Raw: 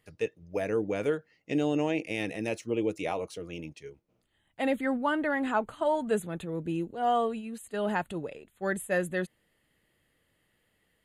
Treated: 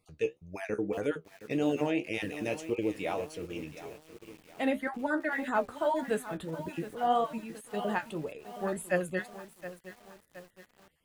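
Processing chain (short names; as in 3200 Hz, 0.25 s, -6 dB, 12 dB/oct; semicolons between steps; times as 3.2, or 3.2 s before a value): random spectral dropouts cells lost 24%; flange 1.8 Hz, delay 9.9 ms, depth 6.1 ms, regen +49%; lo-fi delay 0.718 s, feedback 55%, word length 8-bit, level -13 dB; gain +3 dB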